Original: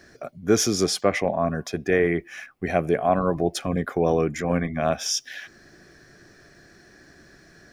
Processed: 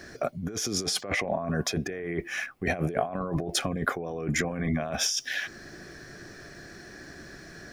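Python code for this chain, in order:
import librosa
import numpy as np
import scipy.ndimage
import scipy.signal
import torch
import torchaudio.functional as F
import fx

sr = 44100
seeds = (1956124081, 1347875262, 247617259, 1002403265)

y = fx.over_compress(x, sr, threshold_db=-30.0, ratio=-1.0)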